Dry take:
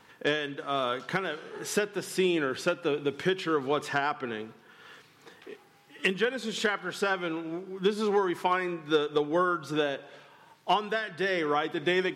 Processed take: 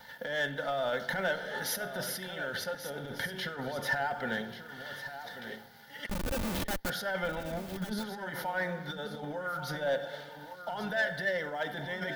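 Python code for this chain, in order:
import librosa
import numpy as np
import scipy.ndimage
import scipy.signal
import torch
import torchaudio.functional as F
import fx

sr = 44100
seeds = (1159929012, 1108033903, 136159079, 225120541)

y = fx.level_steps(x, sr, step_db=20, at=(2.1, 2.86))
y = fx.dynamic_eq(y, sr, hz=4100.0, q=0.75, threshold_db=-46.0, ratio=4.0, max_db=-7)
y = fx.over_compress(y, sr, threshold_db=-33.0, ratio=-1.0)
y = fx.fixed_phaser(y, sr, hz=1700.0, stages=8)
y = fx.room_shoebox(y, sr, seeds[0], volume_m3=3700.0, walls='furnished', distance_m=0.91)
y = fx.schmitt(y, sr, flips_db=-33.5, at=(6.06, 6.9))
y = fx.leveller(y, sr, passes=1)
y = fx.high_shelf(y, sr, hz=11000.0, db=9.5)
y = y + 0.39 * np.pad(y, (int(3.4 * sr / 1000.0), 0))[:len(y)]
y = y + 10.0 ** (-11.5 / 20.0) * np.pad(y, (int(1137 * sr / 1000.0), 0))[:len(y)]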